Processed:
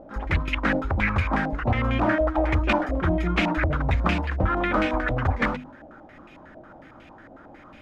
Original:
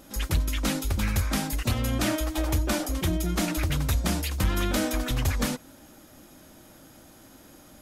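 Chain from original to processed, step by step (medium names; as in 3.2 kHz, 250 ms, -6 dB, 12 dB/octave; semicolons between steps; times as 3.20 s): hum notches 50/100/150/200/250 Hz; step-sequenced low-pass 11 Hz 660–2500 Hz; trim +3 dB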